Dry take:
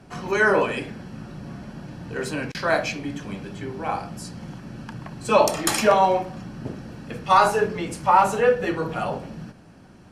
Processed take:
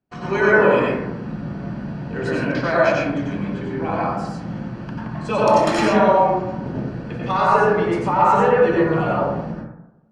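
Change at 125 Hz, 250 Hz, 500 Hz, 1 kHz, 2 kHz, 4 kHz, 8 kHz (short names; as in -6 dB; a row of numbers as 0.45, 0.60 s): +7.5, +8.0, +5.0, +2.5, +3.5, -1.5, -9.0 dB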